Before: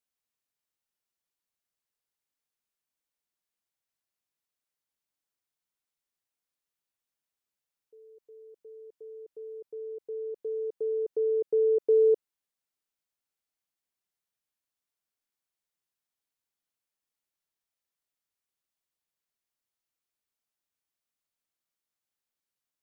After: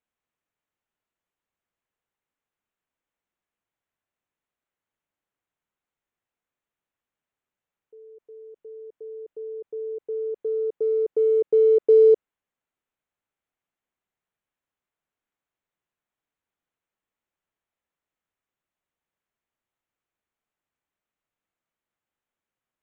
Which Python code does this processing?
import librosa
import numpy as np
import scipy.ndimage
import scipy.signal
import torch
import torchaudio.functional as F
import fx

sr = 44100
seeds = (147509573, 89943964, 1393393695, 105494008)

y = fx.wiener(x, sr, points=9)
y = y * librosa.db_to_amplitude(7.0)